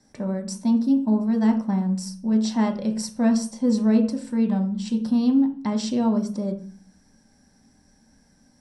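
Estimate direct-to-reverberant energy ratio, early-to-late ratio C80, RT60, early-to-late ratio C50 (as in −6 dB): 2.0 dB, 14.5 dB, 0.40 s, 10.5 dB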